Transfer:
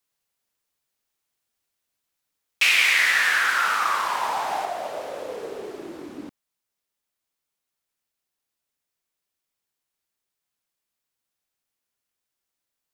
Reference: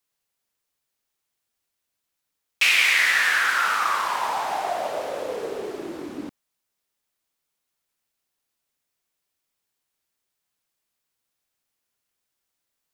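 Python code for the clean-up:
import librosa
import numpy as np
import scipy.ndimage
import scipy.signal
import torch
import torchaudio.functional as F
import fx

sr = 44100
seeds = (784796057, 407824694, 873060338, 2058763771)

y = fx.fix_level(x, sr, at_s=4.65, step_db=3.5)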